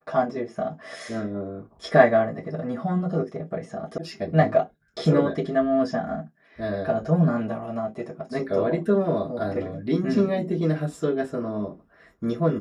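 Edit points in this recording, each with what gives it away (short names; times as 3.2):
3.98 sound cut off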